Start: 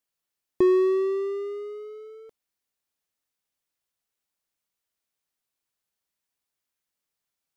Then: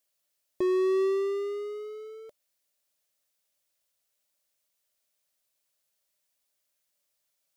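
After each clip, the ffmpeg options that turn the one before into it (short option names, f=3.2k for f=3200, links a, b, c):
-af "equalizer=f=590:w=5:g=12.5,alimiter=limit=-19dB:level=0:latency=1,highshelf=f=2.2k:g=9,volume=-1.5dB"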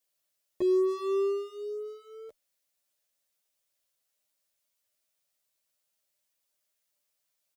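-filter_complex "[0:a]asplit=2[a][b];[b]adelay=10.5,afreqshift=2.5[c];[a][c]amix=inputs=2:normalize=1,volume=1.5dB"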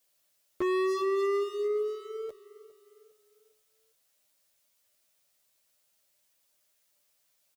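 -af "asoftclip=type=hard:threshold=-34dB,aecho=1:1:406|812|1218|1624:0.106|0.0498|0.0234|0.011,volume=7.5dB"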